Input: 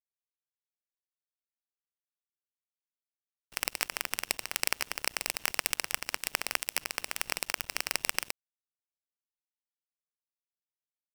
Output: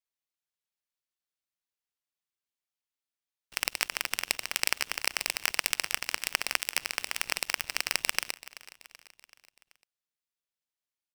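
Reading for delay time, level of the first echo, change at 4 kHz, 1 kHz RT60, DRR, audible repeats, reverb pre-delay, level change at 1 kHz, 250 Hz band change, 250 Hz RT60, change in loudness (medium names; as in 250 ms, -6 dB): 382 ms, -18.0 dB, +3.5 dB, no reverb, no reverb, 4, no reverb, +1.0 dB, -0.5 dB, no reverb, +2.0 dB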